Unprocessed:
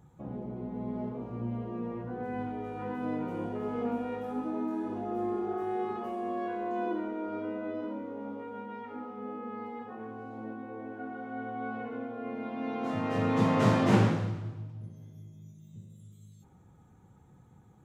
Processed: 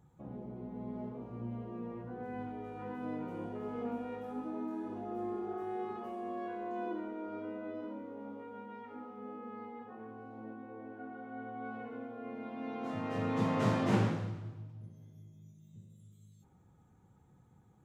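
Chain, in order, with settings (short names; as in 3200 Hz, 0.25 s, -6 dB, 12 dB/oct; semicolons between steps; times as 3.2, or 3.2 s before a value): 9.65–11.65 high shelf 5400 Hz -9.5 dB; gain -6 dB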